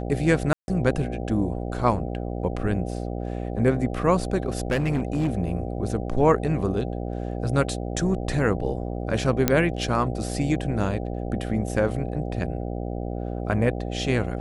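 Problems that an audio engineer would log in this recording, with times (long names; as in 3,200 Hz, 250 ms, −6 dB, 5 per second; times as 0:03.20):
mains buzz 60 Hz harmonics 13 −30 dBFS
0:00.53–0:00.68: drop-out 151 ms
0:04.70–0:05.32: clipping −18.5 dBFS
0:09.48: click −3 dBFS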